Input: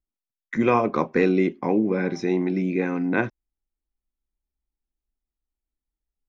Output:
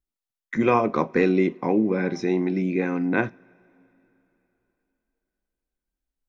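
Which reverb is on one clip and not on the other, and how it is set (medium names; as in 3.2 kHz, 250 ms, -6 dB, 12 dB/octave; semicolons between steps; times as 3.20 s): two-slope reverb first 0.28 s, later 3.5 s, from -21 dB, DRR 18.5 dB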